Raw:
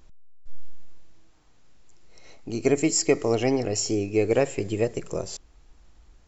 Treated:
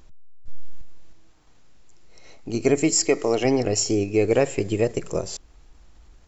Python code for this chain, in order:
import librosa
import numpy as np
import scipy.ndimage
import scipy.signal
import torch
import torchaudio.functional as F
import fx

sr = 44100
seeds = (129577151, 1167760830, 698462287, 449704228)

p1 = fx.level_steps(x, sr, step_db=14)
p2 = x + F.gain(torch.from_numpy(p1), -2.0).numpy()
y = fx.peak_eq(p2, sr, hz=75.0, db=-15.0, octaves=1.8, at=(3.05, 3.45))